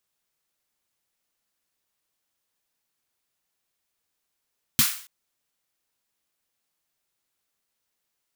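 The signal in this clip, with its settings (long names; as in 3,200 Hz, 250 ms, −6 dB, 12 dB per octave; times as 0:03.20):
synth snare length 0.28 s, tones 150 Hz, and 230 Hz, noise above 1,200 Hz, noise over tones 4 dB, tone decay 0.09 s, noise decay 0.46 s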